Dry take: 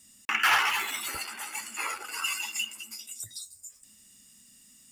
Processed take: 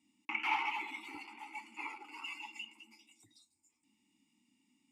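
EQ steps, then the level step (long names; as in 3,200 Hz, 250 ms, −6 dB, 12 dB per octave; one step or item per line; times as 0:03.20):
formant filter u
+4.5 dB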